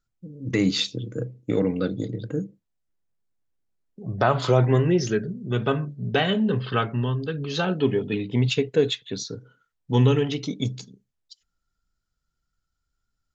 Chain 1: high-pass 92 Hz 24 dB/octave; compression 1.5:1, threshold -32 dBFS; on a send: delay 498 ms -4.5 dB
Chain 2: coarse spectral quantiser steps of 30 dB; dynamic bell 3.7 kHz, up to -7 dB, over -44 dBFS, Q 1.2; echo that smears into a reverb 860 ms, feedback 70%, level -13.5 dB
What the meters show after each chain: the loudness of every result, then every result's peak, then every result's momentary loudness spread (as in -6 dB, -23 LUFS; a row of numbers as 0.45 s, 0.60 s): -29.0 LUFS, -25.5 LUFS; -11.5 dBFS, -6.5 dBFS; 12 LU, 19 LU